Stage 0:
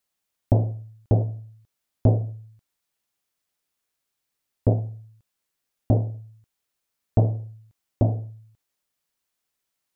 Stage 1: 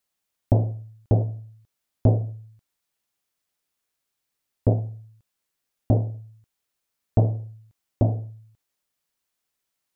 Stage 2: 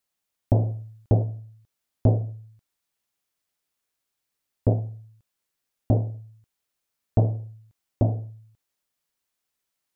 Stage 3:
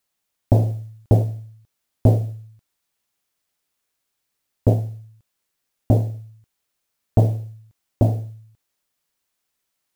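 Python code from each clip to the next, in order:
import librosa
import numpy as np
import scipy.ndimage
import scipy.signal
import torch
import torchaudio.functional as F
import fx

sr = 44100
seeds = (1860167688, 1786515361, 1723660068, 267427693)

y1 = x
y2 = fx.rider(y1, sr, range_db=5, speed_s=0.5)
y3 = fx.mod_noise(y2, sr, seeds[0], snr_db=34)
y3 = y3 * 10.0 ** (4.5 / 20.0)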